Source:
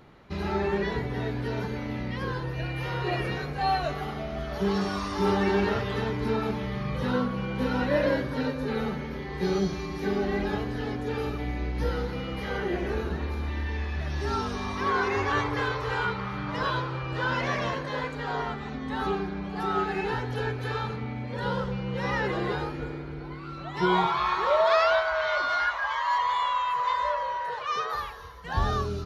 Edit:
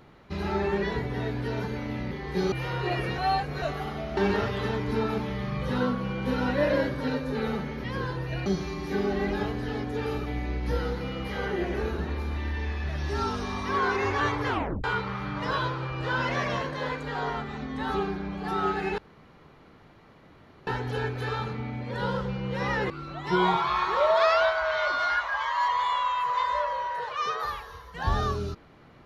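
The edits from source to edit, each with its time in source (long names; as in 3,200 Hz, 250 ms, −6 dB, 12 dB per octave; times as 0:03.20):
0:02.11–0:02.73: swap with 0:09.17–0:09.58
0:03.39–0:03.83: reverse
0:04.38–0:05.50: remove
0:15.60: tape stop 0.36 s
0:20.10: splice in room tone 1.69 s
0:22.33–0:23.40: remove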